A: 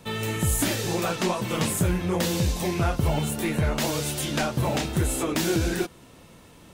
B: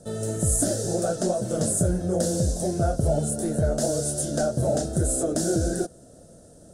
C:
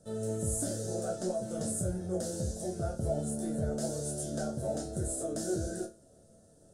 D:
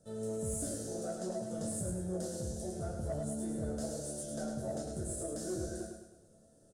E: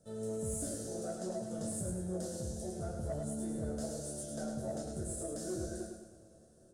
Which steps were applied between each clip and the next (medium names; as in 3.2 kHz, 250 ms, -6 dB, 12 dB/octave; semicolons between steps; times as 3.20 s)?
FFT filter 390 Hz 0 dB, 650 Hz +8 dB, 1 kHz -21 dB, 1.5 kHz -5 dB, 2.3 kHz -28 dB, 5.1 kHz -2 dB, 9.5 kHz +7 dB, 15 kHz -21 dB
chord resonator D2 major, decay 0.27 s
saturation -22.5 dBFS, distortion -25 dB; feedback delay 105 ms, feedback 45%, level -5 dB; trim -5 dB
algorithmic reverb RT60 4.7 s, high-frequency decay 0.9×, pre-delay 20 ms, DRR 16 dB; trim -1 dB